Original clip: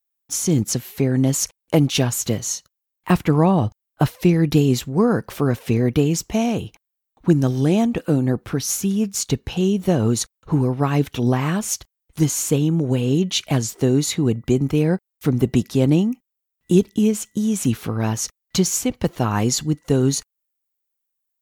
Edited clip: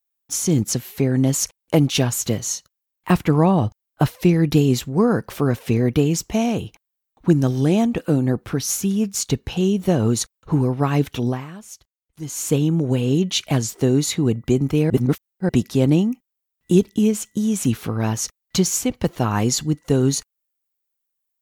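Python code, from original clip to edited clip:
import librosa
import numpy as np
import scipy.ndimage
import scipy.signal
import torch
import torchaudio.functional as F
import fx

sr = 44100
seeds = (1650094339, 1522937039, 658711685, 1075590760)

y = fx.edit(x, sr, fx.fade_down_up(start_s=11.16, length_s=1.37, db=-15.5, fade_s=0.31),
    fx.reverse_span(start_s=14.9, length_s=0.59), tone=tone)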